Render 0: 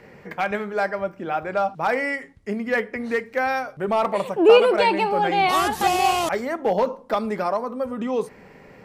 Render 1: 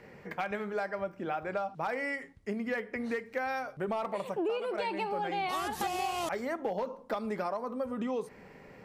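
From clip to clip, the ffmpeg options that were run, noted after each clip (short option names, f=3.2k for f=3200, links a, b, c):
-af "acompressor=threshold=-24dB:ratio=12,volume=-5.5dB"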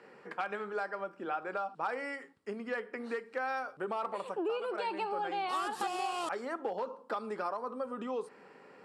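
-af "highpass=330,equalizer=f=630:t=q:w=4:g=-6,equalizer=f=1.3k:t=q:w=4:g=4,equalizer=f=2.1k:t=q:w=4:g=-8,equalizer=f=3.6k:t=q:w=4:g=-3,equalizer=f=6.2k:t=q:w=4:g=-9,lowpass=f=9.6k:w=0.5412,lowpass=f=9.6k:w=1.3066"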